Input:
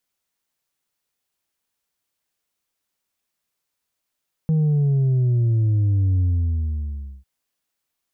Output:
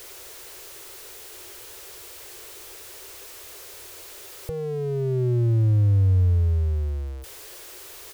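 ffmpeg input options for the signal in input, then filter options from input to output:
-f lavfi -i "aevalsrc='0.158*clip((2.75-t)/1.04,0,1)*tanh(1.41*sin(2*PI*160*2.75/log(65/160)*(exp(log(65/160)*t/2.75)-1)))/tanh(1.41)':d=2.75:s=44100"
-af "aeval=exprs='val(0)+0.5*0.0224*sgn(val(0))':c=same,firequalizer=gain_entry='entry(110,0);entry(180,-29);entry(370,8);entry(710,-3)':delay=0.05:min_phase=1"

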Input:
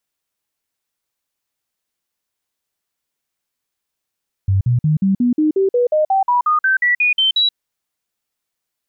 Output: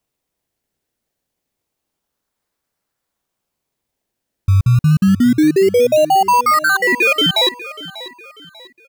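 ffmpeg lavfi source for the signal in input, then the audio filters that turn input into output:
-f lavfi -i "aevalsrc='0.266*clip(min(mod(t,0.18),0.13-mod(t,0.18))/0.005,0,1)*sin(2*PI*96.8*pow(2,floor(t/0.18)/3)*mod(t,0.18))':d=3.06:s=44100"
-filter_complex "[0:a]asplit=2[a][b];[b]acrusher=samples=24:mix=1:aa=0.000001:lfo=1:lforange=24:lforate=0.28,volume=-4dB[c];[a][c]amix=inputs=2:normalize=0,aecho=1:1:592|1184|1776:0.141|0.0509|0.0183"

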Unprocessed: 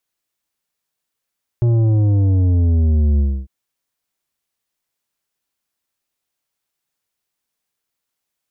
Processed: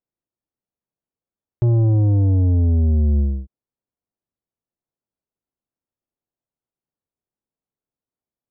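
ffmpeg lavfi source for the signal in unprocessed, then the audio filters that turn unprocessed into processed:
-f lavfi -i "aevalsrc='0.237*clip((1.85-t)/0.28,0,1)*tanh(2.82*sin(2*PI*120*1.85/log(65/120)*(exp(log(65/120)*t/1.85)-1)))/tanh(2.82)':d=1.85:s=44100"
-af "lowshelf=f=68:g=-4,adynamicsmooth=sensitivity=4.5:basefreq=660"

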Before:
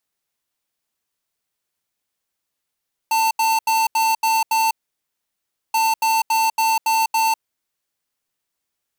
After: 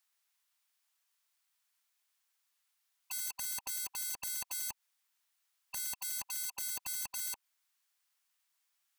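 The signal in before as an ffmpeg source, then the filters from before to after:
-f lavfi -i "aevalsrc='0.133*(2*lt(mod(894*t,1),0.5)-1)*clip(min(mod(mod(t,2.63),0.28),0.2-mod(mod(t,2.63),0.28))/0.005,0,1)*lt(mod(t,2.63),1.68)':d=5.26:s=44100"
-filter_complex "[0:a]afftfilt=real='re*lt(hypot(re,im),0.224)':imag='im*lt(hypot(re,im),0.224)':win_size=1024:overlap=0.75,acrossover=split=760[a][b];[a]acrusher=bits=4:dc=4:mix=0:aa=0.000001[c];[b]alimiter=level_in=2dB:limit=-24dB:level=0:latency=1:release=130,volume=-2dB[d];[c][d]amix=inputs=2:normalize=0"

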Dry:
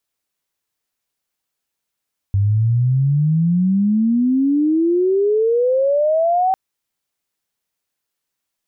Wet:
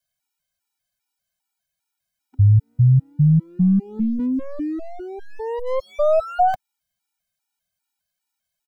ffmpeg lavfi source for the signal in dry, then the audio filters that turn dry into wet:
-f lavfi -i "aevalsrc='pow(10,(-12.5-0.5*t/4.2)/20)*sin(2*PI*97*4.2/log(770/97)*(exp(log(770/97)*t/4.2)-1))':d=4.2:s=44100"
-filter_complex "[0:a]aecho=1:1:1.3:0.72,acrossover=split=110|320|500[a][b][c][d];[c]aeval=exprs='abs(val(0))':c=same[e];[a][b][e][d]amix=inputs=4:normalize=0,afftfilt=real='re*gt(sin(2*PI*2.5*pts/sr)*(1-2*mod(floor(b*sr/1024/250),2)),0)':imag='im*gt(sin(2*PI*2.5*pts/sr)*(1-2*mod(floor(b*sr/1024/250),2)),0)':win_size=1024:overlap=0.75"

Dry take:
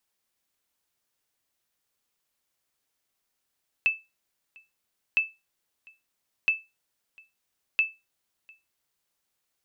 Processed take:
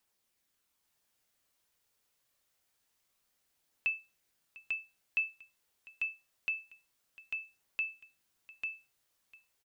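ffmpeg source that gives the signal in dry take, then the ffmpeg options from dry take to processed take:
-f lavfi -i "aevalsrc='0.188*(sin(2*PI*2630*mod(t,1.31))*exp(-6.91*mod(t,1.31)/0.23)+0.0376*sin(2*PI*2630*max(mod(t,1.31)-0.7,0))*exp(-6.91*max(mod(t,1.31)-0.7,0)/0.23))':d=5.24:s=44100"
-filter_complex "[0:a]alimiter=level_in=1dB:limit=-24dB:level=0:latency=1:release=104,volume=-1dB,aphaser=in_gain=1:out_gain=1:delay=2.2:decay=0.21:speed=0.26:type=triangular,asplit=2[a][b];[b]aecho=0:1:845:0.668[c];[a][c]amix=inputs=2:normalize=0"

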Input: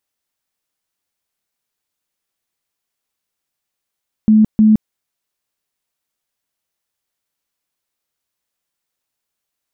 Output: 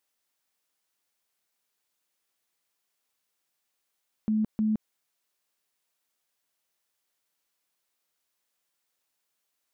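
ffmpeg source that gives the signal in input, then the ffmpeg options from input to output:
-f lavfi -i "aevalsrc='0.501*sin(2*PI*216*mod(t,0.31))*lt(mod(t,0.31),36/216)':d=0.62:s=44100"
-af "lowshelf=f=170:g=-10.5,alimiter=limit=-22dB:level=0:latency=1:release=56"

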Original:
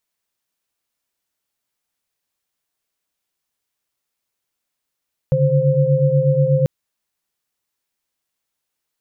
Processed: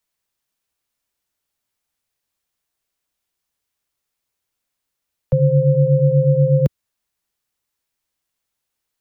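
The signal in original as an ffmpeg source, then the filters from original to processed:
-f lavfi -i "aevalsrc='0.141*(sin(2*PI*138.59*t)+sin(2*PI*146.83*t)+sin(2*PI*523.25*t))':d=1.34:s=44100"
-filter_complex "[0:a]acrossover=split=110|240|320[a][b][c][d];[a]acontrast=35[e];[e][b][c][d]amix=inputs=4:normalize=0"

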